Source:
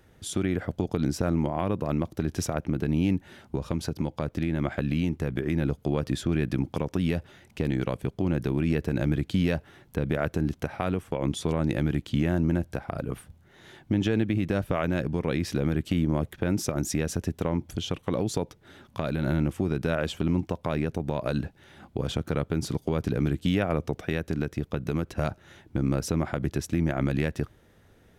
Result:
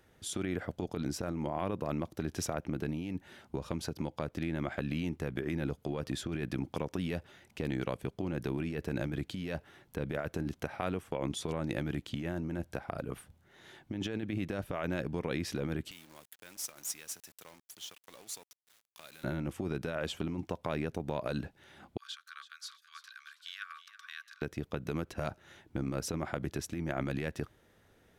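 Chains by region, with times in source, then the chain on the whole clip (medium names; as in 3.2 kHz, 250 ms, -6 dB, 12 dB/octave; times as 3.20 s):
15.91–19.24 s: high-pass 81 Hz 24 dB/octave + pre-emphasis filter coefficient 0.97 + companded quantiser 4-bit
21.97–24.42 s: rippled Chebyshev high-pass 1.1 kHz, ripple 9 dB + modulated delay 327 ms, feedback 31%, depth 73 cents, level -14 dB
whole clip: bass shelf 270 Hz -6.5 dB; compressor with a negative ratio -29 dBFS, ratio -0.5; trim -4.5 dB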